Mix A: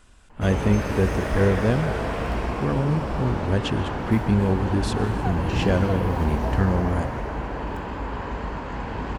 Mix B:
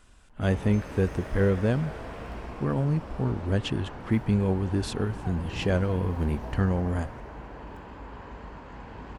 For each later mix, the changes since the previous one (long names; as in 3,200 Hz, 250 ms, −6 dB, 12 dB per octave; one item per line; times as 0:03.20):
speech: send off
background −12.0 dB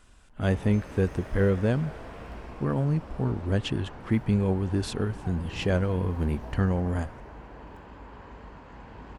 reverb: off